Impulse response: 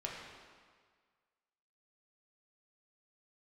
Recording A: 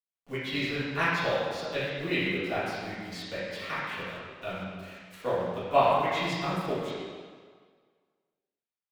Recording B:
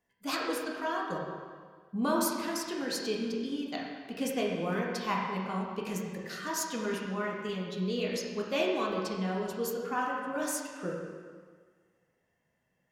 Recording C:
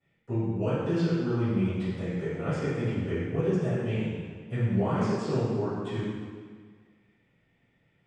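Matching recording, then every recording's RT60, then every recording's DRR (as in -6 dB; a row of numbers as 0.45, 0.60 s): B; 1.7, 1.7, 1.7 s; -12.5, -3.5, -22.0 dB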